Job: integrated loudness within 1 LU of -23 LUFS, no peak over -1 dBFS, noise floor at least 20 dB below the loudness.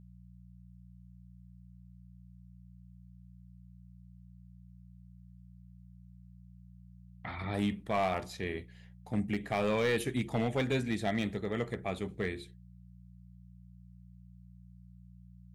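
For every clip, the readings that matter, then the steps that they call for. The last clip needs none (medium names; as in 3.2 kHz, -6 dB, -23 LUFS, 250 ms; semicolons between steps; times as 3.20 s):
clipped samples 0.5%; clipping level -23.5 dBFS; hum 60 Hz; highest harmonic 180 Hz; hum level -52 dBFS; loudness -34.0 LUFS; peak level -23.5 dBFS; loudness target -23.0 LUFS
-> clip repair -23.5 dBFS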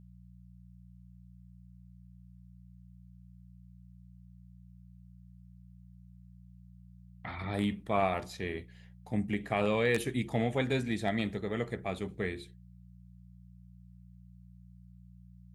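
clipped samples 0.0%; hum 60 Hz; highest harmonic 180 Hz; hum level -52 dBFS
-> de-hum 60 Hz, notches 3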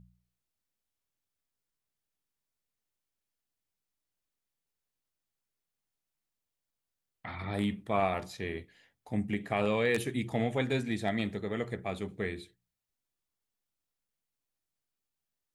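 hum not found; loudness -33.0 LUFS; peak level -15.0 dBFS; loudness target -23.0 LUFS
-> trim +10 dB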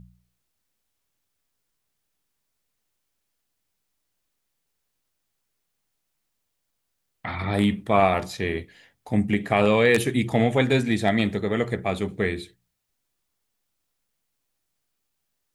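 loudness -23.0 LUFS; peak level -5.0 dBFS; noise floor -78 dBFS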